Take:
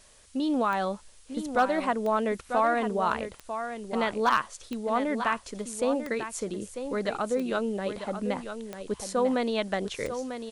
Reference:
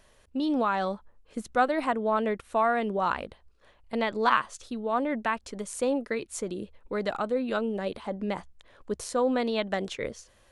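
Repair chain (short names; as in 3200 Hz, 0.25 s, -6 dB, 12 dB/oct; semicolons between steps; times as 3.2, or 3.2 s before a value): clip repair -14.5 dBFS; de-click; noise print and reduce 10 dB; inverse comb 0.945 s -9 dB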